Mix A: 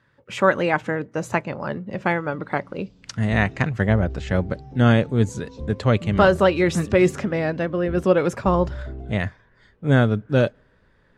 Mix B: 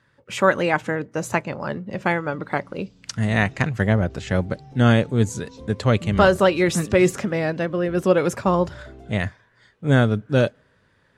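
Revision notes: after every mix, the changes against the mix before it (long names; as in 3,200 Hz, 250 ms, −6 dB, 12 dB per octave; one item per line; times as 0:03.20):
second sound: add spectral tilt +3 dB per octave
master: add high-shelf EQ 6,200 Hz +10 dB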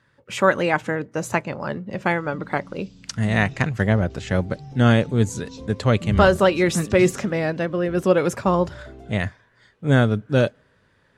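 first sound +6.5 dB
second sound: send +11.0 dB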